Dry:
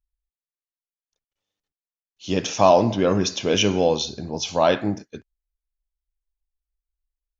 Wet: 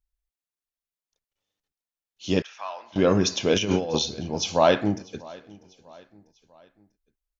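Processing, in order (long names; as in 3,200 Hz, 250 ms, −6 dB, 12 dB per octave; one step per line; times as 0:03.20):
0:02.42–0:02.96: four-pole ladder band-pass 1,800 Hz, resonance 35%
0:03.54–0:03.99: compressor whose output falls as the input rises −23 dBFS, ratio −0.5
repeating echo 645 ms, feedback 47%, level −23 dB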